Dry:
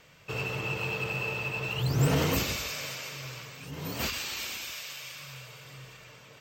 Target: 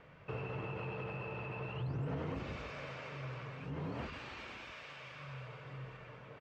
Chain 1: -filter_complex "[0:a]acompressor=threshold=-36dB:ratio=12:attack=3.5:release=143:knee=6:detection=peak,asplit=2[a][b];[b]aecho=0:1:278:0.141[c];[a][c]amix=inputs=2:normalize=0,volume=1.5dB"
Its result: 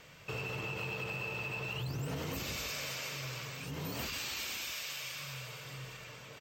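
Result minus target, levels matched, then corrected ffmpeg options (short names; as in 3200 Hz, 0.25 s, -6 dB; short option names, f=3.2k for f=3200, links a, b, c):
2000 Hz band +2.5 dB
-filter_complex "[0:a]acompressor=threshold=-36dB:ratio=12:attack=3.5:release=143:knee=6:detection=peak,lowpass=1.6k,asplit=2[a][b];[b]aecho=0:1:278:0.141[c];[a][c]amix=inputs=2:normalize=0,volume=1.5dB"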